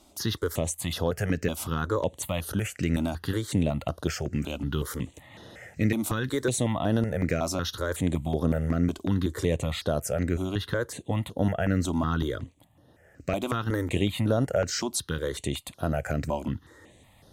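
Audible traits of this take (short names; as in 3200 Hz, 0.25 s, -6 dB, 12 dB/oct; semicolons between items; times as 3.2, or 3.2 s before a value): notches that jump at a steady rate 5.4 Hz 470–7600 Hz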